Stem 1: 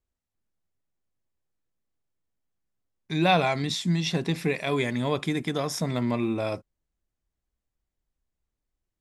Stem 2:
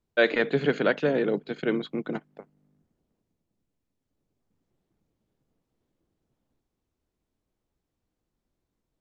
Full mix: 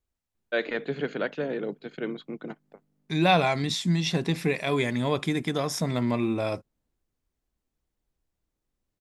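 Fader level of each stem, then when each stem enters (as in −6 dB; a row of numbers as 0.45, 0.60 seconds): +0.5, −6.0 decibels; 0.00, 0.35 seconds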